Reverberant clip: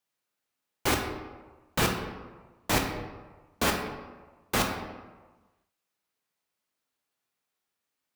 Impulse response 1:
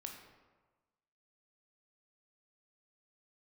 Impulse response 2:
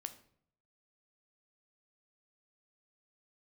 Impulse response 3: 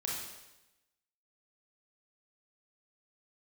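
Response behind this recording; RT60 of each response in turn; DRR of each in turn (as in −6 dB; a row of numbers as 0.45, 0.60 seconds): 1; 1.3, 0.65, 0.95 seconds; 2.0, 8.5, −4.0 decibels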